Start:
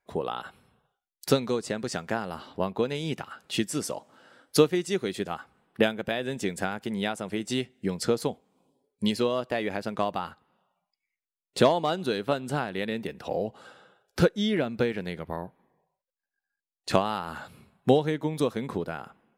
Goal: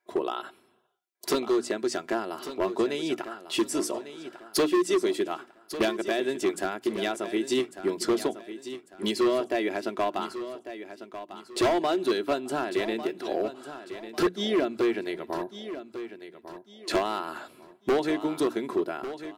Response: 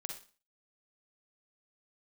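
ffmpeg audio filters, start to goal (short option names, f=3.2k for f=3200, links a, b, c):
-af "highpass=230,equalizer=f=360:t=o:w=0.24:g=10,bandreject=f=60:t=h:w=6,bandreject=f=120:t=h:w=6,bandreject=f=180:t=h:w=6,bandreject=f=240:t=h:w=6,bandreject=f=300:t=h:w=6,aecho=1:1:3:0.48,asoftclip=type=hard:threshold=-19.5dB,aecho=1:1:1148|2296|3444:0.251|0.0854|0.029"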